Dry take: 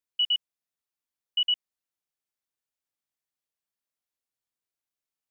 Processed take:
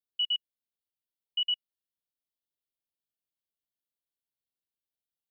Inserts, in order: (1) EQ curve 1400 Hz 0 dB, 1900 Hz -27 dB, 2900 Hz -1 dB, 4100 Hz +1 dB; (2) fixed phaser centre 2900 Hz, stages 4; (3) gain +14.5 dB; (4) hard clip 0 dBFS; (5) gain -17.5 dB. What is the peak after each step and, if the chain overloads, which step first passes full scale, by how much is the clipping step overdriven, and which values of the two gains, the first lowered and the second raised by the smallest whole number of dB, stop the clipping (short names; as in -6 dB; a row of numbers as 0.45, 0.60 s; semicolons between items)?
-20.5, -20.5, -6.0, -6.0, -23.5 dBFS; no overload